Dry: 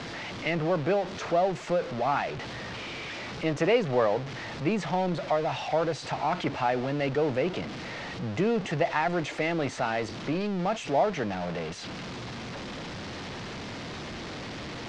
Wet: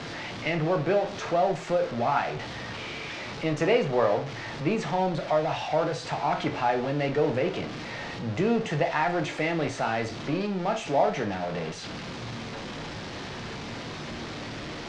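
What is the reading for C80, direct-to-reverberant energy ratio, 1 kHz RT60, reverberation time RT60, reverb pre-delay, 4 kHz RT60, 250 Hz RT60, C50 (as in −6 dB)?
17.0 dB, 5.0 dB, 0.40 s, 0.40 s, 6 ms, 0.35 s, 0.40 s, 12.0 dB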